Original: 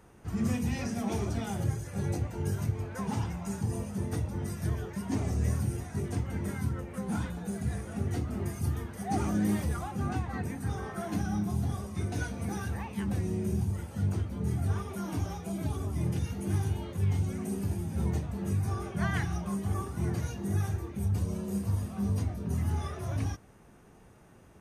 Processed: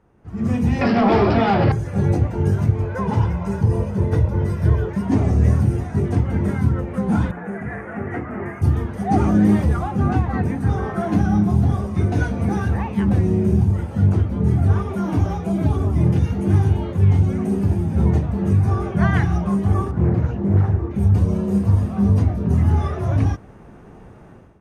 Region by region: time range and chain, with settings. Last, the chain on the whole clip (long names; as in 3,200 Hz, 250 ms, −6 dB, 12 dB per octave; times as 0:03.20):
0:00.81–0:01.72: notch filter 1,500 Hz, Q 20 + bad sample-rate conversion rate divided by 4×, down none, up filtered + mid-hump overdrive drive 21 dB, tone 2,400 Hz, clips at −18.5 dBFS
0:02.83–0:04.89: dynamic equaliser 7,900 Hz, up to −4 dB, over −60 dBFS, Q 0.72 + comb filter 2 ms, depth 44%
0:07.31–0:08.62: high-pass filter 500 Hz 6 dB per octave + high shelf with overshoot 2,800 Hz −13 dB, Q 3
0:19.91–0:20.91: low-pass filter 1,300 Hz 6 dB per octave + highs frequency-modulated by the lows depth 0.53 ms
whole clip: low-pass filter 1,300 Hz 6 dB per octave; automatic gain control gain up to 16.5 dB; level −2 dB